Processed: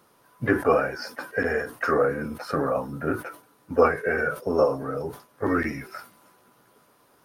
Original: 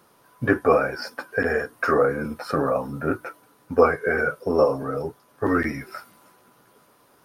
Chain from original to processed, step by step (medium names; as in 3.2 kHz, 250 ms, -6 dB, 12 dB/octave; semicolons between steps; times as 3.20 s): harmony voices +3 st -16 dB; decay stretcher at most 150 dB/s; trim -2.5 dB